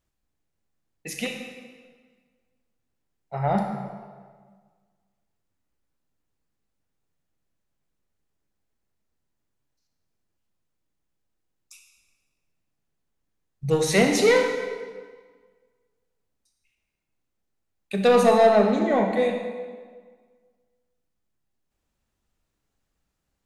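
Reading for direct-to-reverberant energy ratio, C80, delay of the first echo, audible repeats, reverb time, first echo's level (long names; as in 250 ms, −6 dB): 3.0 dB, 6.0 dB, no echo audible, no echo audible, 1.6 s, no echo audible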